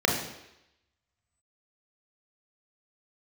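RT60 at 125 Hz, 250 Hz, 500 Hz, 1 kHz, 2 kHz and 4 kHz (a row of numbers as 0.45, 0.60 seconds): 0.70, 0.80, 0.85, 0.85, 0.90, 0.90 seconds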